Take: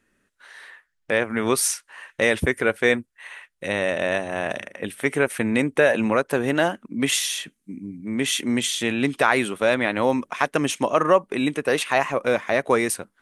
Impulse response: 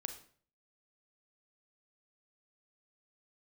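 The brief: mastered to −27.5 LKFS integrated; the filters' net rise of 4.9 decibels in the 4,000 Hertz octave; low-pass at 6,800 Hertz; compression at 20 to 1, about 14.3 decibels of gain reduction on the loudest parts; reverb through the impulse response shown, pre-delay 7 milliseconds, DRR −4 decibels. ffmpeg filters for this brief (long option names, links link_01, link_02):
-filter_complex "[0:a]lowpass=6800,equalizer=frequency=4000:width_type=o:gain=6.5,acompressor=threshold=-26dB:ratio=20,asplit=2[link_01][link_02];[1:a]atrim=start_sample=2205,adelay=7[link_03];[link_02][link_03]afir=irnorm=-1:irlink=0,volume=6dB[link_04];[link_01][link_04]amix=inputs=2:normalize=0,volume=-1.5dB"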